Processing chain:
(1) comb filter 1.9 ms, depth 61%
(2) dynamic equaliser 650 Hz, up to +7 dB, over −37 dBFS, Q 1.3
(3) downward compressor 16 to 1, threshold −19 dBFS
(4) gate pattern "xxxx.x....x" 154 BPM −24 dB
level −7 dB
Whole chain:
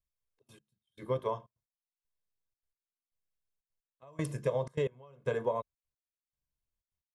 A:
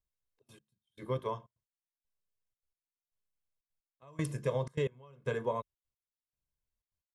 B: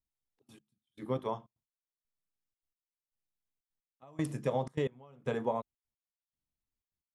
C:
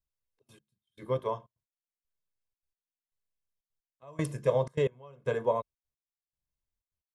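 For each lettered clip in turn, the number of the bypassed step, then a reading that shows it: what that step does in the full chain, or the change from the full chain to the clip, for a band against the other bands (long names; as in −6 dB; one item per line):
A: 2, 500 Hz band −3.0 dB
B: 1, 250 Hz band +5.0 dB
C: 3, average gain reduction 2.0 dB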